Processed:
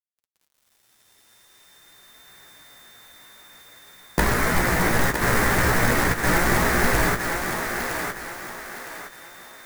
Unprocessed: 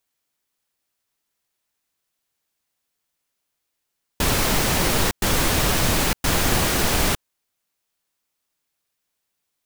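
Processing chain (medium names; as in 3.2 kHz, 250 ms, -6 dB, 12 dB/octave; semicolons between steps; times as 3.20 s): short-time spectra conjugated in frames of 34 ms; recorder AGC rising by 13 dB/s; resonant high shelf 2.4 kHz -8 dB, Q 3; whistle 3.6 kHz -57 dBFS; companded quantiser 4-bit; flange 0.45 Hz, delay 4.4 ms, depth 5.7 ms, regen -55%; on a send: thinning echo 962 ms, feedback 37%, high-pass 310 Hz, level -5 dB; on the sum: bit-crushed delay 412 ms, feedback 55%, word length 8-bit, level -12 dB; trim +6.5 dB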